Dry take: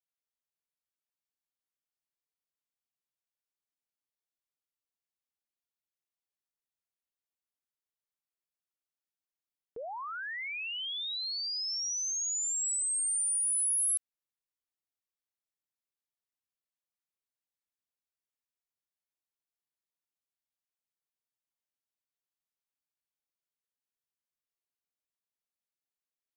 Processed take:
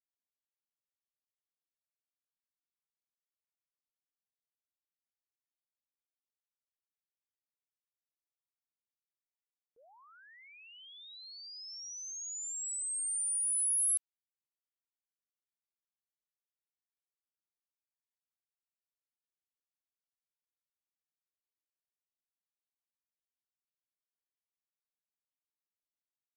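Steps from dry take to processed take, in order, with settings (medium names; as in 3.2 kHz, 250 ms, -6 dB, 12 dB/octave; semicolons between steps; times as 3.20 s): expander -25 dBFS; trim +3.5 dB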